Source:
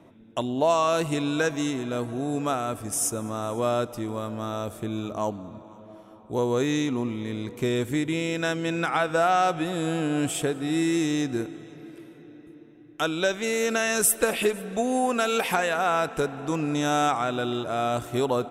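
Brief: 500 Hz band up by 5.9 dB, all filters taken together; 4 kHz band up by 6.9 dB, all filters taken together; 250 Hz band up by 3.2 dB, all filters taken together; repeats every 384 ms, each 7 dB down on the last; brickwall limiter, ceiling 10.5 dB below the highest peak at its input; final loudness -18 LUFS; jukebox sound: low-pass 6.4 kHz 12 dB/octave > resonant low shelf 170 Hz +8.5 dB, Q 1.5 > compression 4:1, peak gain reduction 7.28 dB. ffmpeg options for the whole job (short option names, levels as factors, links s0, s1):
-af "equalizer=f=250:t=o:g=3,equalizer=f=500:t=o:g=7.5,equalizer=f=4000:t=o:g=8.5,alimiter=limit=0.211:level=0:latency=1,lowpass=6400,lowshelf=f=170:t=q:w=1.5:g=8.5,aecho=1:1:384|768|1152|1536|1920:0.447|0.201|0.0905|0.0407|0.0183,acompressor=threshold=0.0631:ratio=4,volume=3.16"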